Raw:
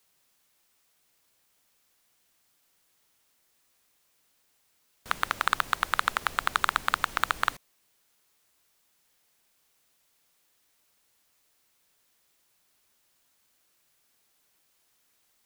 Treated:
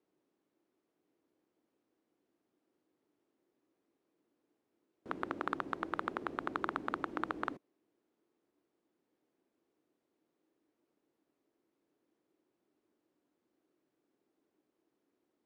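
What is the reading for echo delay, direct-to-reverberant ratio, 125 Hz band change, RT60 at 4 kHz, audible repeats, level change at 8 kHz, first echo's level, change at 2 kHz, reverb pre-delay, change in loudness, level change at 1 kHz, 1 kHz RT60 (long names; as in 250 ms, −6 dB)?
no echo audible, no reverb audible, −6.5 dB, no reverb audible, no echo audible, below −25 dB, no echo audible, −14.0 dB, no reverb audible, −11.0 dB, −10.5 dB, no reverb audible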